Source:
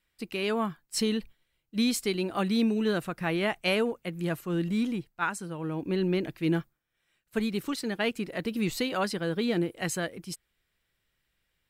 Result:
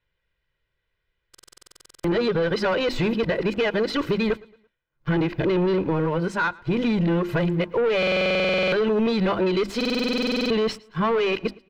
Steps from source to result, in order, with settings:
played backwards from end to start
high-shelf EQ 12,000 Hz +9 dB
mains-hum notches 50/100/150/200/250/300/350 Hz
comb filter 2 ms, depth 55%
in parallel at +0.5 dB: brickwall limiter −22 dBFS, peak gain reduction 7.5 dB
on the sum: leveller curve on the samples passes 3
downward compressor, threshold −19 dBFS, peak gain reduction 5.5 dB
high-frequency loss of the air 240 metres
on a send: repeating echo 112 ms, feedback 39%, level −23.5 dB
on the sum: buffer that repeats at 0:01.30/0:07.98/0:09.76, samples 2,048, times 15

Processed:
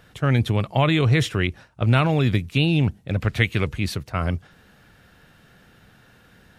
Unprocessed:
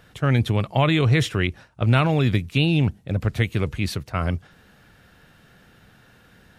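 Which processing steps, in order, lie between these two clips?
0:03.09–0:03.67: parametric band 2,400 Hz +6.5 dB 2 octaves

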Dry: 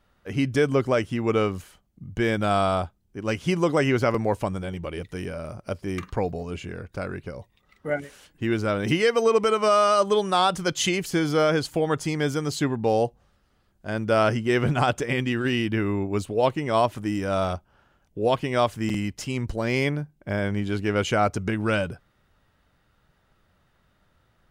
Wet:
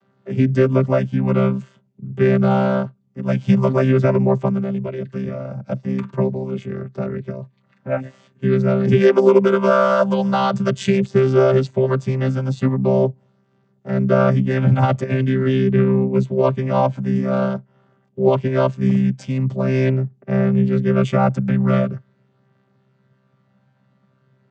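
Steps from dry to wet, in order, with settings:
channel vocoder with a chord as carrier bare fifth, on C3
0:11.00–0:12.62: one half of a high-frequency compander decoder only
level +8 dB

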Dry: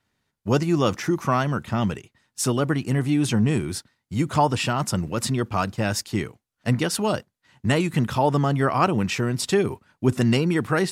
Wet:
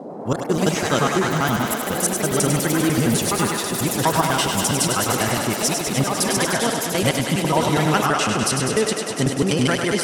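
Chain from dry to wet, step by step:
slices reordered back to front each 90 ms, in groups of 3
low-pass filter 10,000 Hz 24 dB per octave
high-shelf EQ 4,500 Hz +10 dB
reversed playback
upward compression, threshold −27 dBFS
reversed playback
noise in a band 140–650 Hz −35 dBFS
on a send: feedback echo with a high-pass in the loop 109 ms, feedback 85%, high-pass 280 Hz, level −5.5 dB
on the sum: delay with pitch and tempo change per echo 106 ms, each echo +4 semitones, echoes 3, each echo −6 dB
wrong playback speed 44.1 kHz file played as 48 kHz

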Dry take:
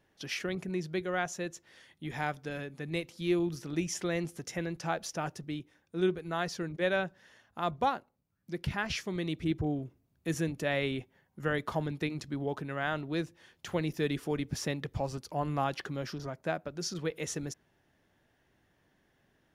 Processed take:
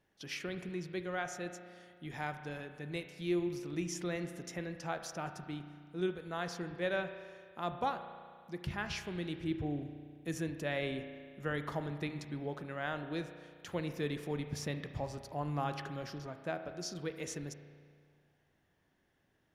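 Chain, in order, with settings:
spring reverb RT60 2 s, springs 34 ms, chirp 45 ms, DRR 8 dB
level −5.5 dB

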